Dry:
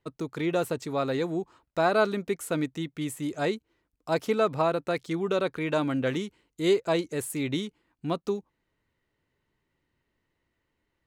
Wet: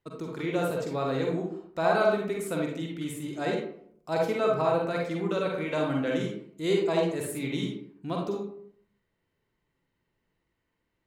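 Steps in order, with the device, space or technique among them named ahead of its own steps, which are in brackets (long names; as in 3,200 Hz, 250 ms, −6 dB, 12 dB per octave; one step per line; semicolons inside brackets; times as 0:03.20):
bathroom (convolution reverb RT60 0.65 s, pre-delay 41 ms, DRR −1 dB)
level −4.5 dB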